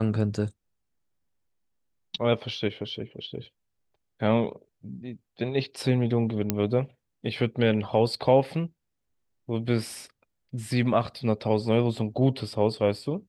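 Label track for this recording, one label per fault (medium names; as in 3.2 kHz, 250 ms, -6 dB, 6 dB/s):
6.500000	6.500000	pop -8 dBFS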